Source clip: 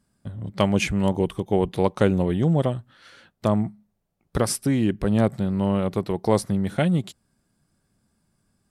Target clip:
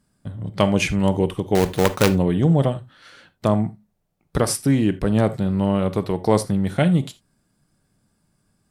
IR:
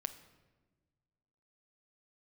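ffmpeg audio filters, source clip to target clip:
-filter_complex "[0:a]asettb=1/sr,asplit=3[a][b][c];[a]atrim=end=1.554[d];[b]atrim=start=1.55:end=2.09,asetpts=PTS-STARTPTS,afade=t=in:d=0.004:c=qsin,afade=t=out:st=0.536:d=0.004:c=qsin,acrusher=bits=2:mode=log:mix=0:aa=0.000001[e];[c]atrim=start=2.086[f];[d][e]acrossfade=d=0.004:c1=hsin:c2=qsin[g];[g][f]acrossfade=d=0.004:c1=qsin:c2=hsin,aeval=exprs='(mod(2*val(0)+1,2)-1)/2':c=same[h];[1:a]atrim=start_sample=2205,atrim=end_sample=3969[i];[h][i]afir=irnorm=-1:irlink=0,volume=4dB"

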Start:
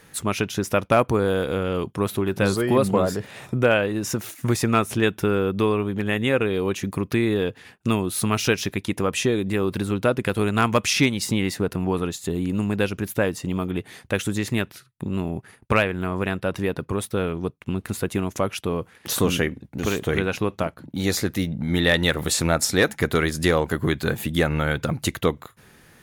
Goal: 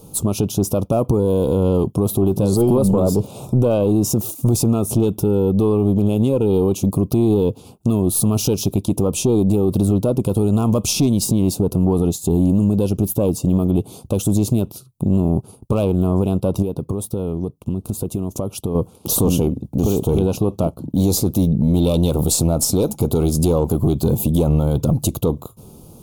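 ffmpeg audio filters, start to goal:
-filter_complex "[0:a]equalizer=f=2.6k:w=0.4:g=-14.5,acontrast=61,alimiter=limit=-14dB:level=0:latency=1:release=37,asettb=1/sr,asplit=3[a][b][c];[a]atrim=end=16.624[d];[b]atrim=start=16.62:end=18.75,asetpts=PTS-STARTPTS,afade=t=in:d=0.004:c=qsin,afade=t=out:st=2.126:d=0.004:c=qsin,acompressor=threshold=-27dB:ratio=4[e];[c]atrim=start=18.746[f];[d][e]acrossfade=d=0.004:c1=hsin:c2=qsin[g];[g][f]acrossfade=d=0.004:c1=qsin:c2=hsin,aeval=exprs='(tanh(5.01*val(0)+0.25)-tanh(0.25))/5.01':c=same,asuperstop=centerf=1800:order=4:qfactor=0.97,volume=7.5dB"

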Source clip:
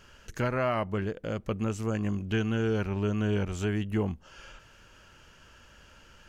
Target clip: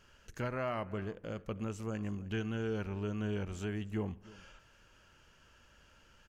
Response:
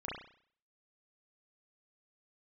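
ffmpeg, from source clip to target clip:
-filter_complex "[0:a]aecho=1:1:310:0.1,asplit=2[a][b];[1:a]atrim=start_sample=2205,asetrate=33516,aresample=44100[c];[b][c]afir=irnorm=-1:irlink=0,volume=-22.5dB[d];[a][d]amix=inputs=2:normalize=0,volume=-8.5dB"

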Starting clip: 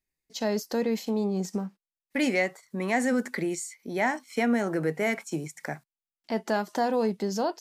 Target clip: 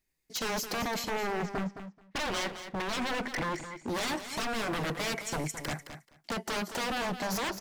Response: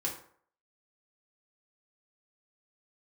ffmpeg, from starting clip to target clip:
-filter_complex "[0:a]asettb=1/sr,asplit=3[a][b][c];[a]atrim=end=1.144[d];[b]atrim=start=1.14:end=3.88,asetpts=PTS-STARTPTS,afade=t=in:d=0.004:c=qsin,afade=t=out:st=2.736:d=0.004:c=qsin,lowpass=2.3k[e];[c]atrim=start=3.876[f];[d][e]acrossfade=d=0.004:c1=hsin:c2=qsin[g];[g][f]acrossfade=d=0.004:c1=qsin:c2=hsin,alimiter=limit=-20.5dB:level=0:latency=1:release=300,aeval=exprs='0.0224*(abs(mod(val(0)/0.0224+3,4)-2)-1)':c=same,aecho=1:1:216|432:0.299|0.0448,volume=5.5dB"

